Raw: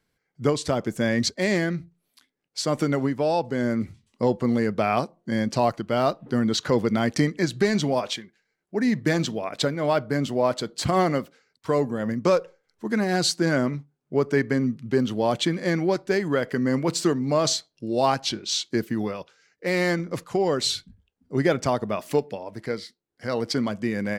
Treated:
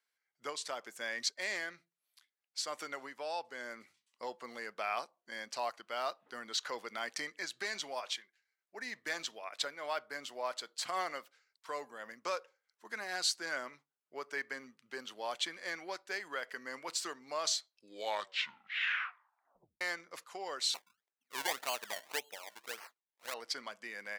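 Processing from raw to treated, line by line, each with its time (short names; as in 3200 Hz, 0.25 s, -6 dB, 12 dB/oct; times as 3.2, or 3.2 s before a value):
17.69 tape stop 2.12 s
20.74–23.34 decimation with a swept rate 24× 1.8 Hz
whole clip: HPF 1000 Hz 12 dB/oct; gain -8 dB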